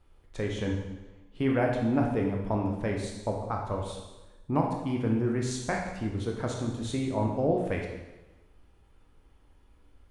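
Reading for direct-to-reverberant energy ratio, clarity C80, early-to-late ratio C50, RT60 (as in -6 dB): -0.5 dB, 5.5 dB, 3.5 dB, 1.1 s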